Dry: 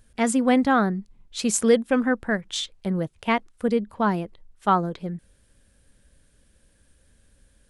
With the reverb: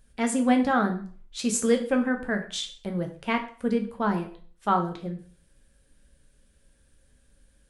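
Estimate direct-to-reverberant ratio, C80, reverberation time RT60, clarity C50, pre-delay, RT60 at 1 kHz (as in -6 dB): 4.0 dB, 15.0 dB, 0.45 s, 11.0 dB, 4 ms, 0.45 s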